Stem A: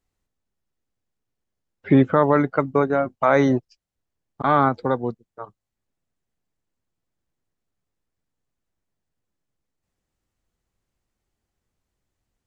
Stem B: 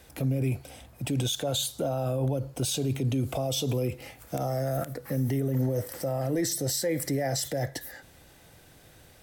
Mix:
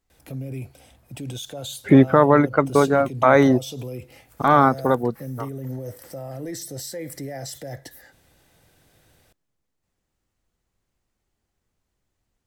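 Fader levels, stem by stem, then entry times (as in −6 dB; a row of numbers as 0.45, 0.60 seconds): +2.5, −5.0 decibels; 0.00, 0.10 seconds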